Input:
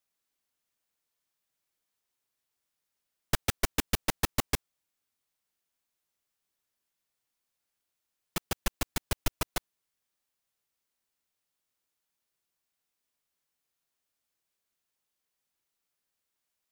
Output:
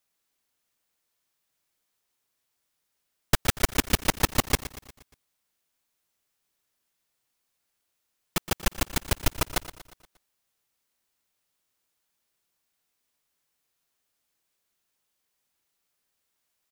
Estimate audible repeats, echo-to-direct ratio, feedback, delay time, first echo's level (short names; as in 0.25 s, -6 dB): 4, -13.0 dB, 51%, 0.118 s, -14.5 dB